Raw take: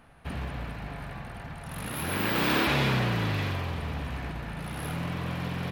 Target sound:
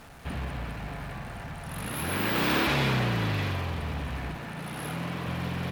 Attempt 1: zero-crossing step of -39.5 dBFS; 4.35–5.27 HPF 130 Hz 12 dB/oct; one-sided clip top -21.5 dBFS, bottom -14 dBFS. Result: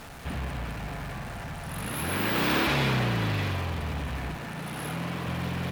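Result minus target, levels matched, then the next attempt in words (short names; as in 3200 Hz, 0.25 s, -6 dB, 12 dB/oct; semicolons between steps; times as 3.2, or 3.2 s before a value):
zero-crossing step: distortion +6 dB
zero-crossing step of -46.5 dBFS; 4.35–5.27 HPF 130 Hz 12 dB/oct; one-sided clip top -21.5 dBFS, bottom -14 dBFS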